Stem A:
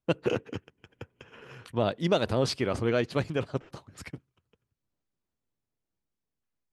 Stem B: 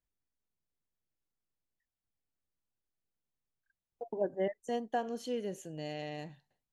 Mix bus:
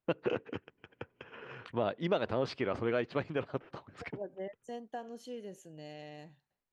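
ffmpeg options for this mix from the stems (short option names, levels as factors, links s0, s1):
-filter_complex "[0:a]lowpass=2700,lowshelf=f=180:g=-10.5,volume=1.33[s0];[1:a]volume=0.447[s1];[s0][s1]amix=inputs=2:normalize=0,acompressor=threshold=0.0126:ratio=1.5"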